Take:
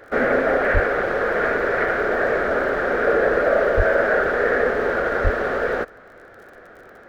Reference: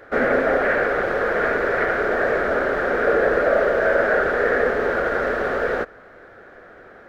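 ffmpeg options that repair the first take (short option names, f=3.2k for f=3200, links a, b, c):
-filter_complex "[0:a]adeclick=t=4,asplit=3[a][b][c];[a]afade=t=out:st=0.73:d=0.02[d];[b]highpass=f=140:w=0.5412,highpass=f=140:w=1.3066,afade=t=in:st=0.73:d=0.02,afade=t=out:st=0.85:d=0.02[e];[c]afade=t=in:st=0.85:d=0.02[f];[d][e][f]amix=inputs=3:normalize=0,asplit=3[g][h][i];[g]afade=t=out:st=3.76:d=0.02[j];[h]highpass=f=140:w=0.5412,highpass=f=140:w=1.3066,afade=t=in:st=3.76:d=0.02,afade=t=out:st=3.88:d=0.02[k];[i]afade=t=in:st=3.88:d=0.02[l];[j][k][l]amix=inputs=3:normalize=0,asplit=3[m][n][o];[m]afade=t=out:st=5.23:d=0.02[p];[n]highpass=f=140:w=0.5412,highpass=f=140:w=1.3066,afade=t=in:st=5.23:d=0.02,afade=t=out:st=5.35:d=0.02[q];[o]afade=t=in:st=5.35:d=0.02[r];[p][q][r]amix=inputs=3:normalize=0"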